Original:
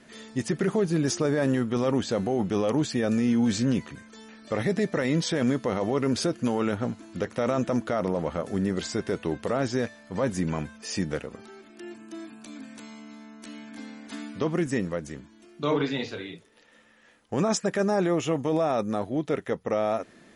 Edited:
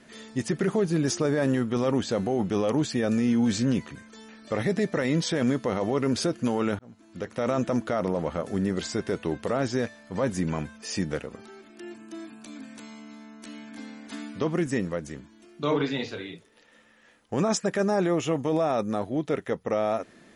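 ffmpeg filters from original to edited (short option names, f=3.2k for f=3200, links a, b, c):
-filter_complex "[0:a]asplit=2[a][b];[a]atrim=end=6.79,asetpts=PTS-STARTPTS,afade=t=out:st=6.786:d=0.004:c=hsin[c];[b]atrim=start=6.79,asetpts=PTS-STARTPTS,afade=t=in:d=0.73[d];[c][d]concat=n=2:v=0:a=1"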